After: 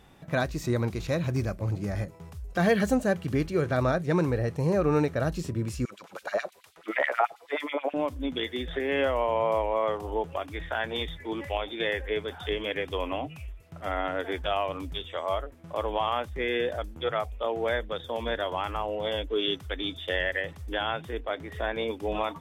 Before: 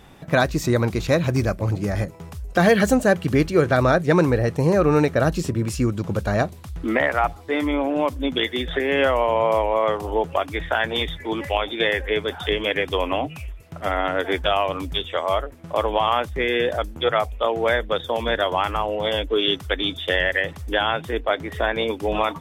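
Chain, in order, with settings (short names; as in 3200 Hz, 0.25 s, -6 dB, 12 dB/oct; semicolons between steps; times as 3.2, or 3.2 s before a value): harmonic-percussive split percussive -5 dB; 5.85–7.94 LFO high-pass sine 9.3 Hz 420–2900 Hz; gain -6 dB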